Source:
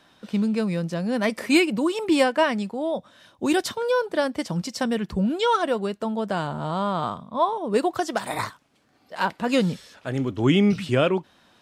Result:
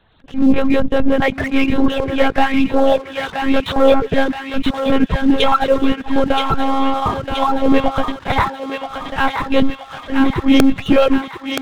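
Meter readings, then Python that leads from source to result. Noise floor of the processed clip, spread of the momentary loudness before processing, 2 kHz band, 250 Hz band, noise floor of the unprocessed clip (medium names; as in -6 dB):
-37 dBFS, 9 LU, +7.0 dB, +8.5 dB, -60 dBFS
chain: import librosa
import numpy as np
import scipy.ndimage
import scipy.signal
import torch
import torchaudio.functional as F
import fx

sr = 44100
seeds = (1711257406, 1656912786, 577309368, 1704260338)

p1 = fx.recorder_agc(x, sr, target_db=-13.0, rise_db_per_s=31.0, max_gain_db=30)
p2 = fx.auto_swell(p1, sr, attack_ms=169.0)
p3 = fx.lpc_monotone(p2, sr, seeds[0], pitch_hz=270.0, order=8)
p4 = fx.low_shelf(p3, sr, hz=110.0, db=-8.0)
p5 = fx.dereverb_blind(p4, sr, rt60_s=0.93)
p6 = fx.low_shelf(p5, sr, hz=240.0, db=9.5)
p7 = fx.leveller(p6, sr, passes=2)
p8 = (np.mod(10.0 ** (5.0 / 20.0) * p7 + 1.0, 2.0) - 1.0) / 10.0 ** (5.0 / 20.0)
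p9 = p8 + fx.echo_thinned(p8, sr, ms=975, feedback_pct=64, hz=890.0, wet_db=-3.5, dry=0)
y = p9 * 10.0 ** (2.0 / 20.0)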